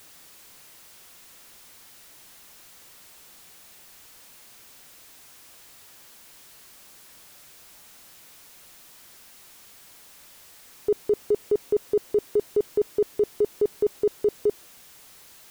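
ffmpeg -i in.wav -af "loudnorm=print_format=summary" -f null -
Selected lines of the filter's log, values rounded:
Input Integrated:    -26.5 LUFS
Input True Peak:     -15.5 dBTP
Input LRA:            20.5 LU
Input Threshold:     -41.1 LUFS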